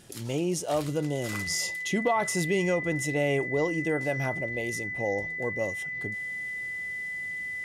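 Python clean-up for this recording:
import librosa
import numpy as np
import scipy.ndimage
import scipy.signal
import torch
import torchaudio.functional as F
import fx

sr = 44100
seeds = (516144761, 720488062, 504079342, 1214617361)

y = fx.fix_declip(x, sr, threshold_db=-16.5)
y = fx.notch(y, sr, hz=2000.0, q=30.0)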